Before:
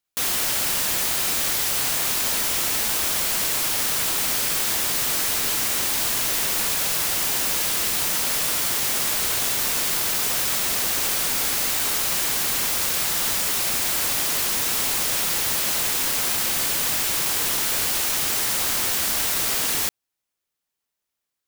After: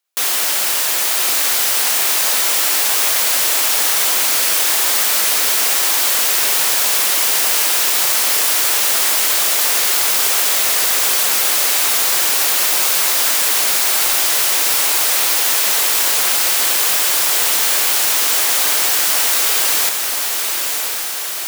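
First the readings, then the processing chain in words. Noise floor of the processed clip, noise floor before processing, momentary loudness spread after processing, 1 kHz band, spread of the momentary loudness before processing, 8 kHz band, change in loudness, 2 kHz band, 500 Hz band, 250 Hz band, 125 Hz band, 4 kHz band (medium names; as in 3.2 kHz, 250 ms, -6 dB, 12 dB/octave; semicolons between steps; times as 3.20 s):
-20 dBFS, -83 dBFS, 2 LU, +7.5 dB, 0 LU, +8.0 dB, +7.5 dB, +8.0 dB, +6.0 dB, -0.5 dB, under -10 dB, +8.0 dB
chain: high-pass 430 Hz 12 dB/octave; echo that smears into a reverb 1043 ms, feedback 62%, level -4.5 dB; trim +6 dB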